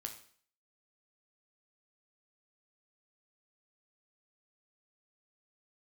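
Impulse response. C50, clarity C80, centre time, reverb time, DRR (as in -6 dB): 9.5 dB, 13.0 dB, 14 ms, 0.50 s, 3.5 dB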